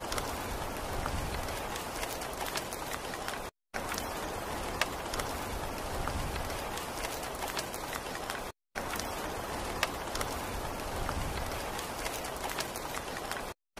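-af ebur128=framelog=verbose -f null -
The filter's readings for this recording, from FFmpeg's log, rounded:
Integrated loudness:
  I:         -36.4 LUFS
  Threshold: -46.4 LUFS
Loudness range:
  LRA:         1.1 LU
  Threshold: -56.4 LUFS
  LRA low:   -36.9 LUFS
  LRA high:  -35.8 LUFS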